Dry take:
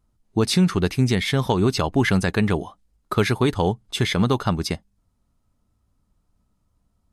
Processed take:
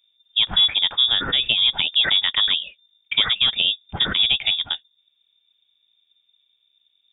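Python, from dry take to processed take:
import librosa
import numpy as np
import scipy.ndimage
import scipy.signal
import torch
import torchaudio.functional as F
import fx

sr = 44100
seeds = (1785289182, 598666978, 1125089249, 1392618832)

y = fx.freq_invert(x, sr, carrier_hz=3600)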